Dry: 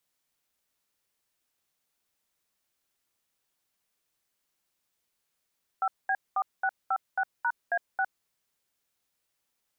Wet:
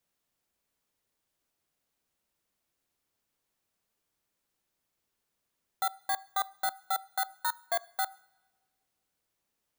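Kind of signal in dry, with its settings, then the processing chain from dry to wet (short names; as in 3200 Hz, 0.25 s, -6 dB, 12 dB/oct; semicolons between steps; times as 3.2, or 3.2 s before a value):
DTMF "5B4656#A6", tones 59 ms, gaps 0.212 s, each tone -26.5 dBFS
FFT order left unsorted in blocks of 16 samples; tilt shelf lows +3.5 dB, about 930 Hz; two-slope reverb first 0.67 s, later 2 s, from -18 dB, DRR 19.5 dB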